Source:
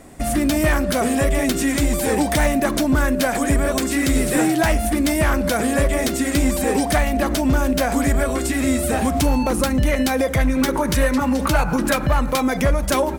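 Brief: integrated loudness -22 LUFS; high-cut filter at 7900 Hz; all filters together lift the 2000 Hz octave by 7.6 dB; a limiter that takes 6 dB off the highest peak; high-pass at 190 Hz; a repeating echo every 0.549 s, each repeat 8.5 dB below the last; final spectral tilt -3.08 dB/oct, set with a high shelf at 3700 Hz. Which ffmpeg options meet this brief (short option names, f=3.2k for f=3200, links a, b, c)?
-af "highpass=190,lowpass=7.9k,equalizer=f=2k:t=o:g=8,highshelf=f=3.7k:g=5,alimiter=limit=-9dB:level=0:latency=1,aecho=1:1:549|1098|1647|2196:0.376|0.143|0.0543|0.0206,volume=-3.5dB"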